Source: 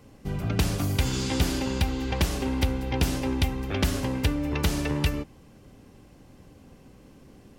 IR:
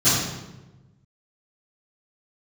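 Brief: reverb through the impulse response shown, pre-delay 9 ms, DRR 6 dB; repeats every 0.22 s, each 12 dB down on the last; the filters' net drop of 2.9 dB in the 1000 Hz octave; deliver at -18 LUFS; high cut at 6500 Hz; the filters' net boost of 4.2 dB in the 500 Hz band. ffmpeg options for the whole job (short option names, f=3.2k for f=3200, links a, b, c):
-filter_complex "[0:a]lowpass=6.5k,equalizer=f=500:t=o:g=6.5,equalizer=f=1k:t=o:g=-6.5,aecho=1:1:220|440|660:0.251|0.0628|0.0157,asplit=2[a][b];[1:a]atrim=start_sample=2205,adelay=9[c];[b][c]afir=irnorm=-1:irlink=0,volume=-24.5dB[d];[a][d]amix=inputs=2:normalize=0,volume=4.5dB"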